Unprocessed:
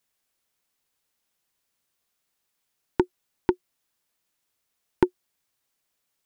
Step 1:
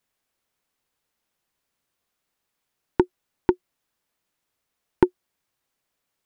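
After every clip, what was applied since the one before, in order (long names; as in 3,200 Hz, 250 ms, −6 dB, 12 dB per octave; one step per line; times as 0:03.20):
high-shelf EQ 2,900 Hz −7 dB
level +3 dB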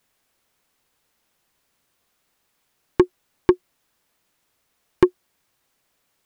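soft clipping −15 dBFS, distortion −8 dB
level +9 dB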